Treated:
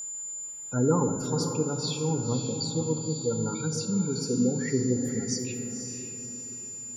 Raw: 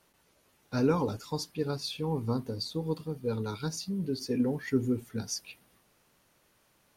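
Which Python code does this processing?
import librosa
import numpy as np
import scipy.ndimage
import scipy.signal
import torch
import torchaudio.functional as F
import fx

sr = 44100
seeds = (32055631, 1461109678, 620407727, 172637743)

p1 = fx.spec_gate(x, sr, threshold_db=-20, keep='strong')
p2 = fx.room_shoebox(p1, sr, seeds[0], volume_m3=1100.0, walls='mixed', distance_m=0.79)
p3 = p2 + 10.0 ** (-36.0 / 20.0) * np.sin(2.0 * np.pi * 7100.0 * np.arange(len(p2)) / sr)
p4 = p3 + fx.echo_diffused(p3, sr, ms=524, feedback_pct=41, wet_db=-8, dry=0)
y = F.gain(torch.from_numpy(p4), 2.0).numpy()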